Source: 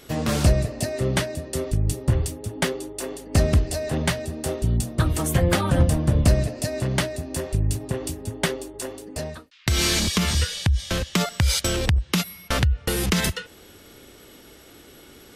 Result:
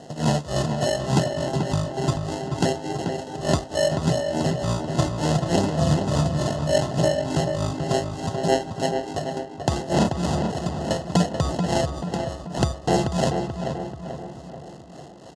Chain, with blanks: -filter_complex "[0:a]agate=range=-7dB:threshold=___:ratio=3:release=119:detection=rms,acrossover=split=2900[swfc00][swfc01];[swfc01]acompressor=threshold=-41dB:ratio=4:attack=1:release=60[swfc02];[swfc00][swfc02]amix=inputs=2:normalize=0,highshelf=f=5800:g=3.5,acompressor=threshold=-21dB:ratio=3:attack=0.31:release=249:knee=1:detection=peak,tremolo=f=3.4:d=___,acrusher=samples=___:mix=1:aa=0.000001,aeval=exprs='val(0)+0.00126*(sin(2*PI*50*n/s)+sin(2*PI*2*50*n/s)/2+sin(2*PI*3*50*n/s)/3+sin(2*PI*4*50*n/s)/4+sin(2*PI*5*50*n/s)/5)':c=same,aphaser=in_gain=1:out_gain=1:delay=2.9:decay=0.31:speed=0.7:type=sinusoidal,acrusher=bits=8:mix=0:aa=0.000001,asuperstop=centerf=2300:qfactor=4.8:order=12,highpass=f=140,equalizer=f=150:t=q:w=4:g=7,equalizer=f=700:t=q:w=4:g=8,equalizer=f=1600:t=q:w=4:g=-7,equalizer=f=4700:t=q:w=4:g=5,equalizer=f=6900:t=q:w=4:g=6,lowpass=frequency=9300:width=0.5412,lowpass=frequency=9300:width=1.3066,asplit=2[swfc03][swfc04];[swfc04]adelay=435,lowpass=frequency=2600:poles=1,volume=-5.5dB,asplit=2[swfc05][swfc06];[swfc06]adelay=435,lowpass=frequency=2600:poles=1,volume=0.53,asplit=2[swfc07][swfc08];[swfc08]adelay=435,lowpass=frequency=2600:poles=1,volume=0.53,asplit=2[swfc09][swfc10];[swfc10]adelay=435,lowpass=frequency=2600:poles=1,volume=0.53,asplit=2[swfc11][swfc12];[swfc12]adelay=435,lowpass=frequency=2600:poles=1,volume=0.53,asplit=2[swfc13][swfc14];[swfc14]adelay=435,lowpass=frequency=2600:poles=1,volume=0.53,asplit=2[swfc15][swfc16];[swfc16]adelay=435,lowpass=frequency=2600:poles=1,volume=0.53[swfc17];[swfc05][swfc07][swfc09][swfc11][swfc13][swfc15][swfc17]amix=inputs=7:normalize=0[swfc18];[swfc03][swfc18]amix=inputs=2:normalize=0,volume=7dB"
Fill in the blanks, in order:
-35dB, 0.94, 37